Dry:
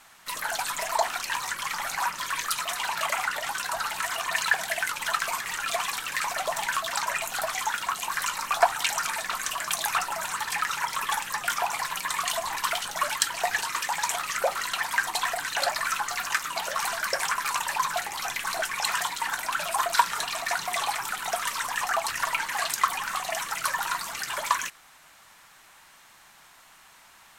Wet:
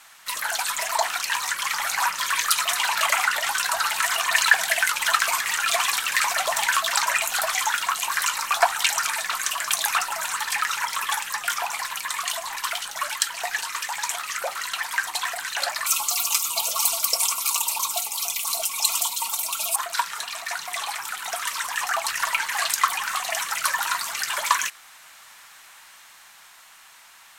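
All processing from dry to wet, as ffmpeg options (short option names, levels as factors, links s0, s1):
-filter_complex "[0:a]asettb=1/sr,asplit=3[s0][s1][s2];[s0]atrim=end=15.864[s3];[s1]atrim=start=15.86:end=19.76,asetpts=PTS-STARTPTS,afade=t=in:d=0.004:c=qsin,afade=t=out:st=3.896:d=0.004:c=qsin,asuperstop=centerf=1700:order=4:qfactor=1.4,aemphasis=mode=production:type=50kf,aecho=1:1:4.4:0.77,atrim=end_sample=171990[s4];[s2]atrim=start=19.756[s5];[s3][s4]acrossfade=d=0.004:c1=hsin:c2=qsin[s6];[s6][s5]acrossfade=d=0.004:c1=qsin:c2=hsin,tiltshelf=f=630:g=-6.5,dynaudnorm=f=180:g=21:m=3.76,volume=0.891"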